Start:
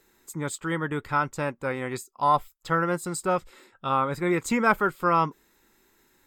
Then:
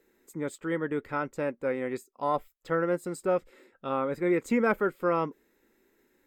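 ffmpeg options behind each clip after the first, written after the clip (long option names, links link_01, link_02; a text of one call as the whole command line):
ffmpeg -i in.wav -af "equalizer=frequency=125:width_type=o:width=1:gain=-3,equalizer=frequency=250:width_type=o:width=1:gain=7,equalizer=frequency=500:width_type=o:width=1:gain=10,equalizer=frequency=1000:width_type=o:width=1:gain=-4,equalizer=frequency=2000:width_type=o:width=1:gain=5,equalizer=frequency=4000:width_type=o:width=1:gain=-3,equalizer=frequency=8000:width_type=o:width=1:gain=-3,volume=-8.5dB" out.wav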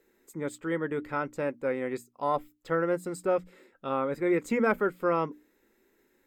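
ffmpeg -i in.wav -af "bandreject=frequency=60:width_type=h:width=6,bandreject=frequency=120:width_type=h:width=6,bandreject=frequency=180:width_type=h:width=6,bandreject=frequency=240:width_type=h:width=6,bandreject=frequency=300:width_type=h:width=6" out.wav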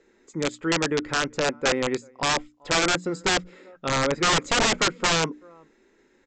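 ffmpeg -i in.wav -filter_complex "[0:a]asplit=2[link_01][link_02];[link_02]adelay=384.8,volume=-30dB,highshelf=frequency=4000:gain=-8.66[link_03];[link_01][link_03]amix=inputs=2:normalize=0,aresample=16000,aeval=exprs='(mod(14.1*val(0)+1,2)-1)/14.1':channel_layout=same,aresample=44100,volume=7dB" out.wav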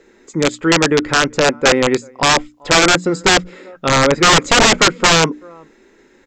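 ffmpeg -i in.wav -af "acontrast=68,volume=4.5dB" out.wav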